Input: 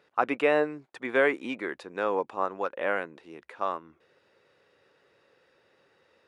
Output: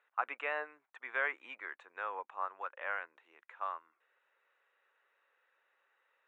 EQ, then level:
moving average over 9 samples
Chebyshev high-pass filter 1,200 Hz, order 2
−4.5 dB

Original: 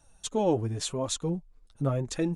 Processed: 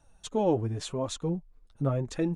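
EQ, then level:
high-shelf EQ 4,100 Hz −9.5 dB
0.0 dB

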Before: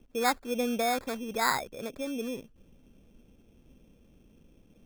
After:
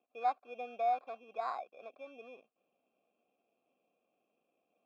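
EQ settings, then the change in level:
formant filter a
band-pass filter 170–5,200 Hz
bass and treble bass −4 dB, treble −1 dB
0.0 dB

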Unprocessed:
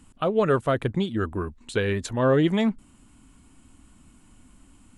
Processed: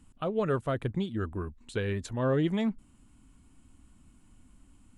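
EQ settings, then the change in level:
low-shelf EQ 190 Hz +6 dB
−8.5 dB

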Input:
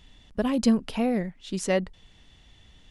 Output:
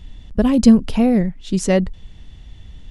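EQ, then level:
dynamic equaliser 6,800 Hz, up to +4 dB, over −49 dBFS, Q 0.91
low-shelf EQ 130 Hz +8.5 dB
low-shelf EQ 440 Hz +7 dB
+3.5 dB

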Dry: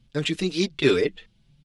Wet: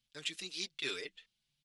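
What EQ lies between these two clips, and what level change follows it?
first-order pre-emphasis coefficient 0.97
high-shelf EQ 6,300 Hz −9.5 dB
−1.0 dB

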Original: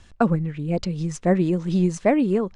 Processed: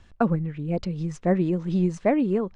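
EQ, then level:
low-pass filter 2,900 Hz 6 dB per octave
−2.5 dB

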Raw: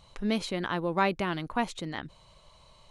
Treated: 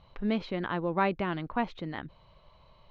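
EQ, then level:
low-pass filter 5,700 Hz 12 dB per octave
high-frequency loss of the air 260 metres
0.0 dB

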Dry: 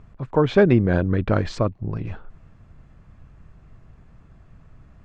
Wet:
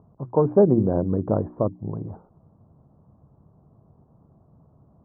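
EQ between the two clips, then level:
high-pass filter 120 Hz 12 dB per octave
Butterworth low-pass 1,000 Hz 36 dB per octave
mains-hum notches 60/120/180/240/300/360 Hz
0.0 dB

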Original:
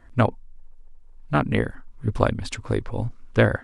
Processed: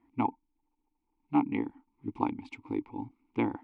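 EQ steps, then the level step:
dynamic equaliser 860 Hz, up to +5 dB, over −32 dBFS, Q 0.97
formant filter u
+2.5 dB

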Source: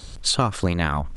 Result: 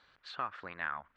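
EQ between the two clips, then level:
resonant band-pass 1,600 Hz, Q 2.1
high-frequency loss of the air 190 metres
−6.0 dB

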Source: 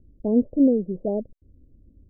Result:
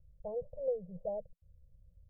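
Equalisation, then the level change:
elliptic band-stop filter 170–500 Hz, stop band 40 dB
−7.0 dB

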